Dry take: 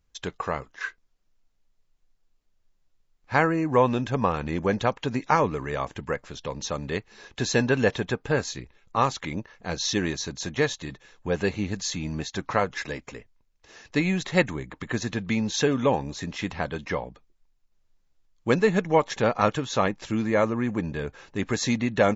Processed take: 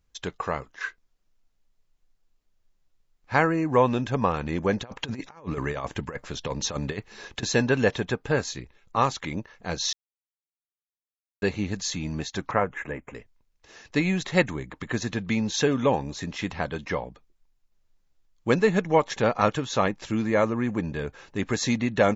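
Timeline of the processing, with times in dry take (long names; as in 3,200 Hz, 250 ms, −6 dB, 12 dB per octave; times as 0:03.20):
0:04.83–0:07.43: compressor whose output falls as the input rises −31 dBFS, ratio −0.5
0:09.93–0:11.42: silence
0:12.51–0:13.15: Butterworth band-reject 4,700 Hz, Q 0.71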